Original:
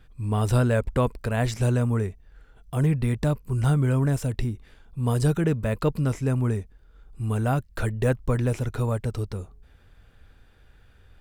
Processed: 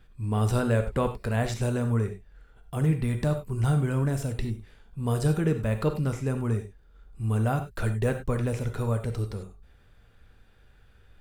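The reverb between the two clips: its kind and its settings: gated-style reverb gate 120 ms flat, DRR 6.5 dB; trim -3 dB

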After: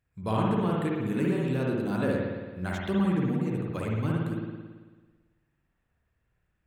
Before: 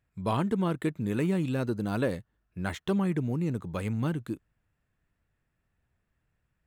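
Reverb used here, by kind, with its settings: spring tank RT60 1.4 s, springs 55 ms, chirp 70 ms, DRR -3 dB; trim -3 dB

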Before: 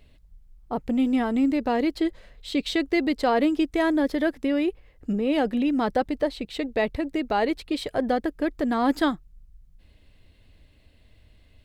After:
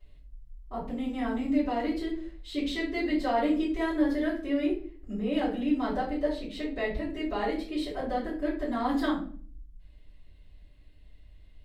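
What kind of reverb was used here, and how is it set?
simulated room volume 39 m³, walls mixed, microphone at 2.7 m; trim -19.5 dB

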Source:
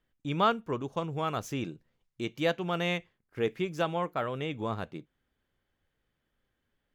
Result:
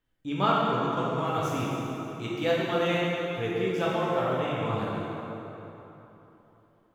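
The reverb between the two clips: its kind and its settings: plate-style reverb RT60 3.4 s, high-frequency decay 0.65×, DRR -6.5 dB; trim -3.5 dB

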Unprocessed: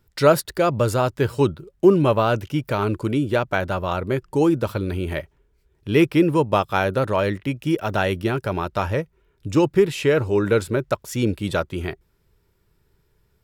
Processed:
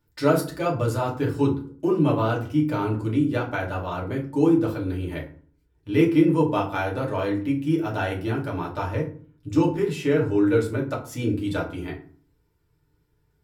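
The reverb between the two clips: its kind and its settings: FDN reverb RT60 0.43 s, low-frequency decay 1.5×, high-frequency decay 0.6×, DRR -3.5 dB; trim -10.5 dB

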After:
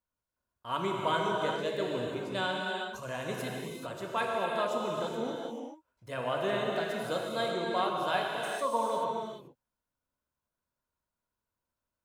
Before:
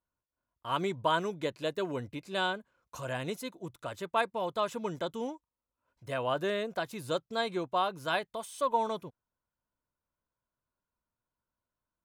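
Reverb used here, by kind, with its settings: gated-style reverb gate 460 ms flat, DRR -2 dB; trim -3 dB

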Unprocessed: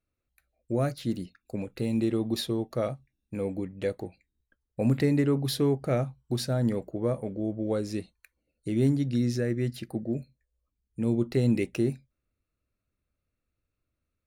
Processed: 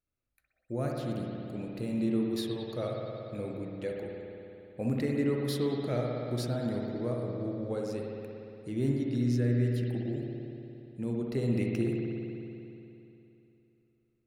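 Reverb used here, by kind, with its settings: spring tank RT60 3 s, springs 58 ms, chirp 55 ms, DRR -1 dB; trim -7 dB

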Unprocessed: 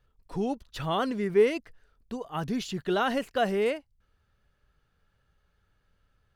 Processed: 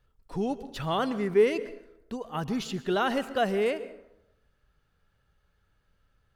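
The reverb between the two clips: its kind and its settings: plate-style reverb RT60 0.87 s, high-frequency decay 0.55×, pre-delay 105 ms, DRR 14.5 dB

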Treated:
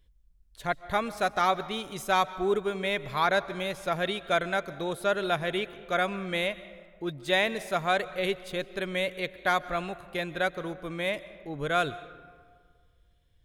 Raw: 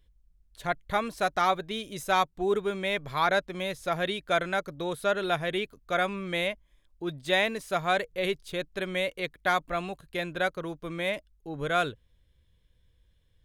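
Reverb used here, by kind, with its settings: algorithmic reverb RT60 1.8 s, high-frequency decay 0.5×, pre-delay 95 ms, DRR 16 dB

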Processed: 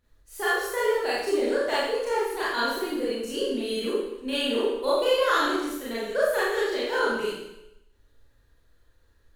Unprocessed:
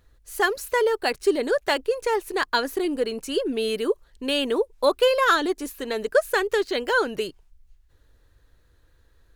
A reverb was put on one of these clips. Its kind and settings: Schroeder reverb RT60 0.87 s, combs from 27 ms, DRR -9.5 dB; trim -12 dB

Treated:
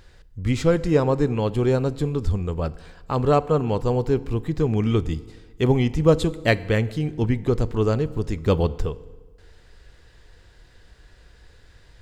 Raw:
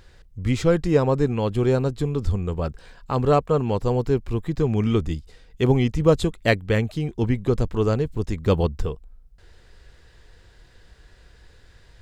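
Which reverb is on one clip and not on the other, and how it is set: FDN reverb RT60 1.4 s, low-frequency decay 1×, high-frequency decay 0.75×, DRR 16 dB

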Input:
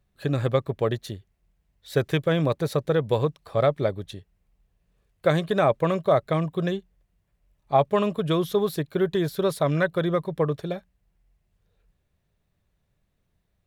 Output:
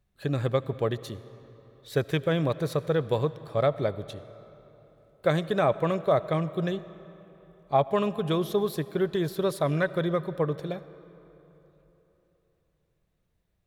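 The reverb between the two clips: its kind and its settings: algorithmic reverb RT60 3.6 s, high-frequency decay 0.7×, pre-delay 40 ms, DRR 16 dB; trim -3 dB

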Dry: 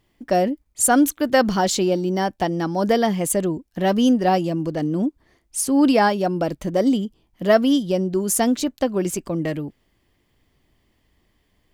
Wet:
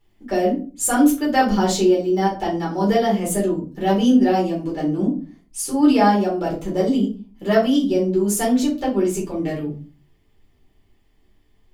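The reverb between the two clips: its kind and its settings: simulated room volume 190 m³, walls furnished, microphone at 4.2 m; trim -9 dB

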